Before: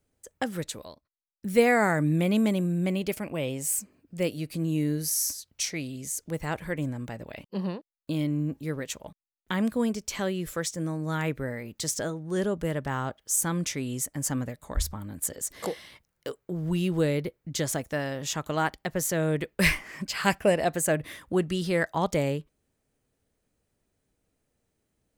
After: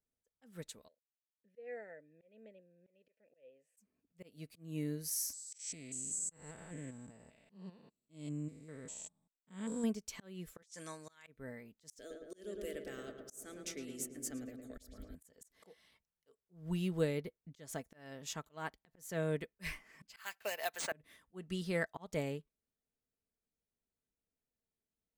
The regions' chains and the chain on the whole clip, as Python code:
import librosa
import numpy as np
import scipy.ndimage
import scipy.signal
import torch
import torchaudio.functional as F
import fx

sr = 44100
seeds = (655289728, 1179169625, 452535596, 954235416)

y = fx.chain(x, sr, fx.vowel_filter(vowel='e'),
    fx.high_shelf(hz=2200.0, db=-5.5), at=(0.88, 3.77))
y = fx.chain(y, sr, fx.spec_steps(hold_ms=200),
    fx.lowpass_res(hz=7800.0, q=15.0), at=(5.33, 9.84))
y = fx.chain(y, sr, fx.weighting(curve='ITU-R 468'),
    fx.over_compress(threshold_db=-36.0, ratio=-1.0), at=(10.62, 11.27))
y = fx.chain(y, sr, fx.fixed_phaser(hz=390.0, stages=4),
    fx.echo_filtered(ms=110, feedback_pct=79, hz=1700.0, wet_db=-5.0),
    fx.band_squash(depth_pct=40), at=(11.99, 15.15))
y = fx.chain(y, sr, fx.highpass(hz=900.0, slope=12),
    fx.resample_bad(factor=3, down='none', up='hold'),
    fx.band_squash(depth_pct=100), at=(20.16, 20.92))
y = y + 0.32 * np.pad(y, (int(4.5 * sr / 1000.0), 0))[:len(y)]
y = fx.auto_swell(y, sr, attack_ms=223.0)
y = fx.upward_expand(y, sr, threshold_db=-45.0, expansion=1.5)
y = y * librosa.db_to_amplitude(-7.5)